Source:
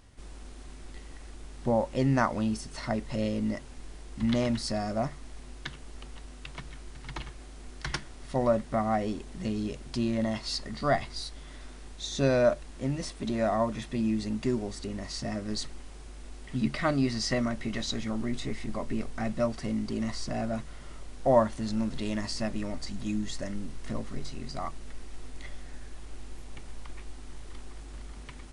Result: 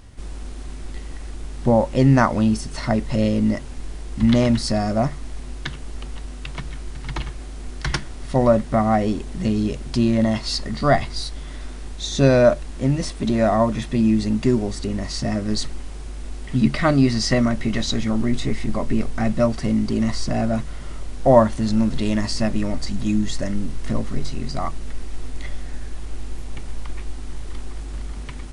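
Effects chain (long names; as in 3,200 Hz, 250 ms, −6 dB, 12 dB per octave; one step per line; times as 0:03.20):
low-shelf EQ 250 Hz +5 dB
level +8 dB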